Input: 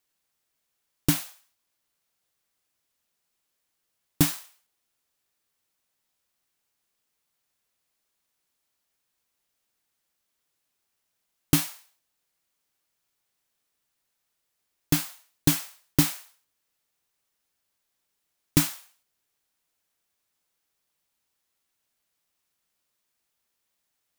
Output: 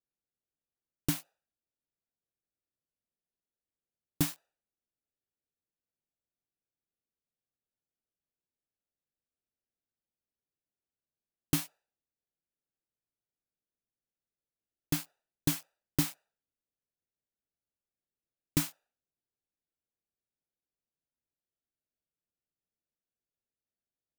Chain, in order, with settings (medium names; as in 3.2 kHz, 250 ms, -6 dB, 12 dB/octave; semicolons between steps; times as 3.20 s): local Wiener filter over 41 samples; trim -8 dB